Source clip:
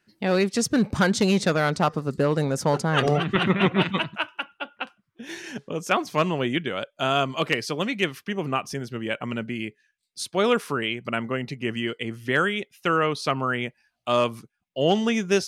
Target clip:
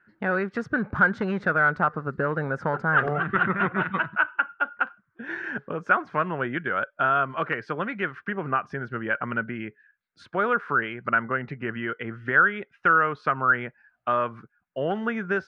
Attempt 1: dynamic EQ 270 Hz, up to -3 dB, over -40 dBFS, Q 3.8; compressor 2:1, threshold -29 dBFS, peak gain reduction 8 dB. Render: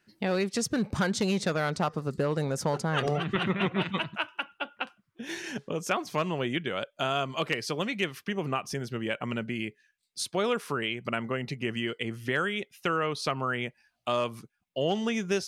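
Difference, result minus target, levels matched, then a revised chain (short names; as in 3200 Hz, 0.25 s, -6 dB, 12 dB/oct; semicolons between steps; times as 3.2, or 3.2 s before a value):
2000 Hz band -5.0 dB
dynamic EQ 270 Hz, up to -3 dB, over -40 dBFS, Q 3.8; compressor 2:1, threshold -29 dBFS, peak gain reduction 8 dB; synth low-pass 1500 Hz, resonance Q 5.4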